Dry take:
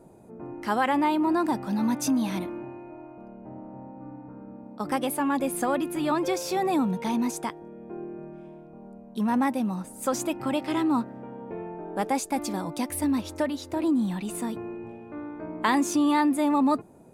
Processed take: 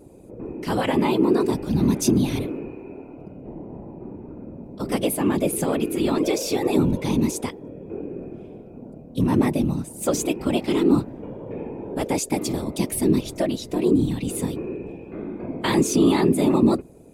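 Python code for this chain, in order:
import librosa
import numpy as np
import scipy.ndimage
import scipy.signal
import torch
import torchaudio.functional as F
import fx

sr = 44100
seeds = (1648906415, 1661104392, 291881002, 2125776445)

y = fx.band_shelf(x, sr, hz=1100.0, db=-9.0, octaves=1.7)
y = fx.whisperise(y, sr, seeds[0])
y = y * librosa.db_to_amplitude(5.5)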